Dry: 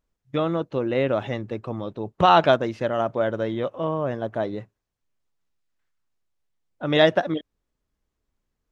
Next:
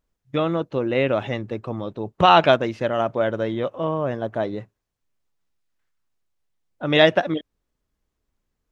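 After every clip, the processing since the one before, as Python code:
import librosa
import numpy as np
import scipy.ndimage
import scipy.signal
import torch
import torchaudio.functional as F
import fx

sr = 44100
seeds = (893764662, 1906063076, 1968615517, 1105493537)

y = fx.dynamic_eq(x, sr, hz=2500.0, q=2.2, threshold_db=-41.0, ratio=4.0, max_db=6)
y = y * 10.0 ** (1.5 / 20.0)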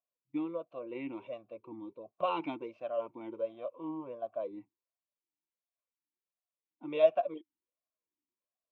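y = fx.notch_comb(x, sr, f0_hz=420.0)
y = fx.vowel_sweep(y, sr, vowels='a-u', hz=1.4)
y = y * 10.0 ** (-5.0 / 20.0)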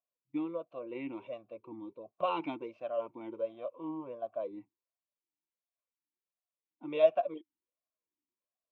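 y = x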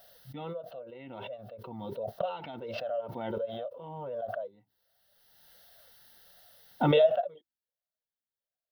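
y = fx.fixed_phaser(x, sr, hz=1600.0, stages=8)
y = fx.pre_swell(y, sr, db_per_s=26.0)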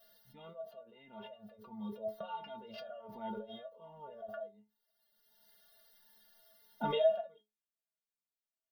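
y = fx.stiff_resonator(x, sr, f0_hz=210.0, decay_s=0.25, stiffness=0.008)
y = y * 10.0 ** (4.5 / 20.0)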